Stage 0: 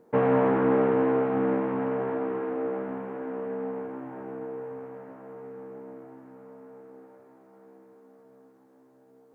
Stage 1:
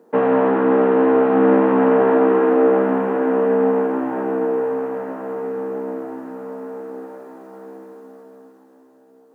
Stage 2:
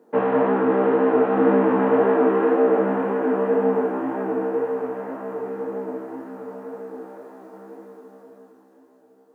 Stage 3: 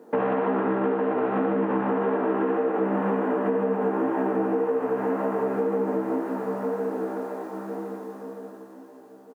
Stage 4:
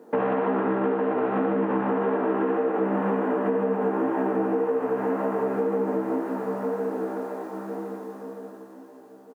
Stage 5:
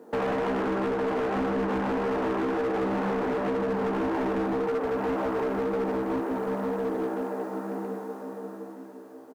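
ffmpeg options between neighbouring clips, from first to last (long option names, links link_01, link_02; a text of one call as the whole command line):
ffmpeg -i in.wav -af "dynaudnorm=framelen=220:gausssize=13:maxgain=10.5dB,highpass=frequency=190:width=0.5412,highpass=frequency=190:width=1.3066,bandreject=frequency=2200:width=11,volume=6dB" out.wav
ffmpeg -i in.wav -af "flanger=delay=20:depth=5.6:speed=1.9" out.wav
ffmpeg -i in.wav -af "alimiter=limit=-16.5dB:level=0:latency=1:release=29,aecho=1:1:116.6|218.7:0.631|0.355,acompressor=threshold=-28dB:ratio=6,volume=6.5dB" out.wav
ffmpeg -i in.wav -af anull out.wav
ffmpeg -i in.wav -af "aecho=1:1:908:0.266,asoftclip=type=hard:threshold=-24.5dB" out.wav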